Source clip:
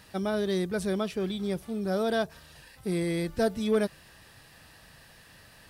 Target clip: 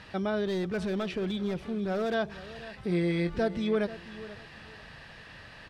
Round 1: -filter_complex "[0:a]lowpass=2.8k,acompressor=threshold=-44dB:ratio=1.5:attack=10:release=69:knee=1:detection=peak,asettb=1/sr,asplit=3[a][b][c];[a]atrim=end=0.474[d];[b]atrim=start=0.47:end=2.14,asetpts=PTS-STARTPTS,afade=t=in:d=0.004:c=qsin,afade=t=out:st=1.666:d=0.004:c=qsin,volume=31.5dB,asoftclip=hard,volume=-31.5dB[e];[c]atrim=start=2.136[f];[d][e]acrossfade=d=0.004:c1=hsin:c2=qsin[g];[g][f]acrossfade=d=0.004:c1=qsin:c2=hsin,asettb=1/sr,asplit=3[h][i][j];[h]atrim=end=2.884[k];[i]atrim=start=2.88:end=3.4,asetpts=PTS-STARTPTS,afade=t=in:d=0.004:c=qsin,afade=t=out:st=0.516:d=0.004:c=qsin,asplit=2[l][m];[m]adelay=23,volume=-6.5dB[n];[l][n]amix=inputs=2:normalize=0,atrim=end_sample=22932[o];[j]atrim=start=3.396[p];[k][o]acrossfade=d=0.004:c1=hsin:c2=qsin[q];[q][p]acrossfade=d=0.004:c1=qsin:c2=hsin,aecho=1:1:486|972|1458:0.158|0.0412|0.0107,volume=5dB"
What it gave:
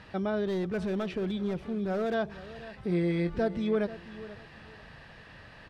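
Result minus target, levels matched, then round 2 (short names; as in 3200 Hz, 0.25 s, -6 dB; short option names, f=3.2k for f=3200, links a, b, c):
4000 Hz band -4.5 dB
-filter_complex "[0:a]lowpass=2.8k,highshelf=f=2k:g=6.5,acompressor=threshold=-44dB:ratio=1.5:attack=10:release=69:knee=1:detection=peak,asettb=1/sr,asplit=3[a][b][c];[a]atrim=end=0.474[d];[b]atrim=start=0.47:end=2.14,asetpts=PTS-STARTPTS,afade=t=in:d=0.004:c=qsin,afade=t=out:st=1.666:d=0.004:c=qsin,volume=31.5dB,asoftclip=hard,volume=-31.5dB[e];[c]atrim=start=2.136[f];[d][e]acrossfade=d=0.004:c1=hsin:c2=qsin[g];[g][f]acrossfade=d=0.004:c1=qsin:c2=hsin,asettb=1/sr,asplit=3[h][i][j];[h]atrim=end=2.884[k];[i]atrim=start=2.88:end=3.4,asetpts=PTS-STARTPTS,afade=t=in:d=0.004:c=qsin,afade=t=out:st=0.516:d=0.004:c=qsin,asplit=2[l][m];[m]adelay=23,volume=-6.5dB[n];[l][n]amix=inputs=2:normalize=0,atrim=end_sample=22932[o];[j]atrim=start=3.396[p];[k][o]acrossfade=d=0.004:c1=hsin:c2=qsin[q];[q][p]acrossfade=d=0.004:c1=qsin:c2=hsin,aecho=1:1:486|972|1458:0.158|0.0412|0.0107,volume=5dB"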